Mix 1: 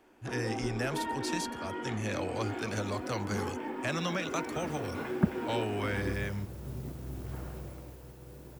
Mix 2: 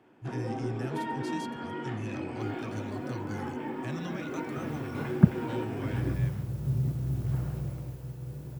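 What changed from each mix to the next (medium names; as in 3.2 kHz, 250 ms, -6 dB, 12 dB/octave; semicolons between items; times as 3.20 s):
speech -11.0 dB; master: add peaking EQ 130 Hz +15 dB 0.93 oct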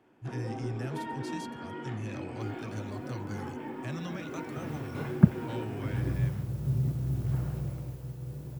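first sound -3.5 dB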